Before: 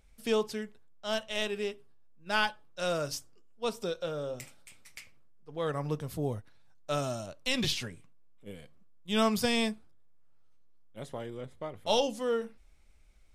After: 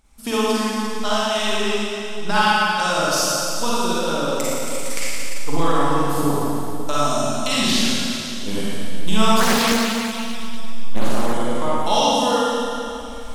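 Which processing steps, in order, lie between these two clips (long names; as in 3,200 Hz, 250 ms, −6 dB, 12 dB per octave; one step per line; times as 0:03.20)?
camcorder AGC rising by 17 dB per second
graphic EQ with 10 bands 125 Hz −9 dB, 250 Hz +5 dB, 500 Hz −8 dB, 1,000 Hz +8 dB, 2,000 Hz −4 dB, 8,000 Hz +4 dB
reverb reduction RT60 1.5 s
four-comb reverb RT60 2.9 s, DRR −9 dB
0:09.40–0:11.34: highs frequency-modulated by the lows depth 0.8 ms
level +4 dB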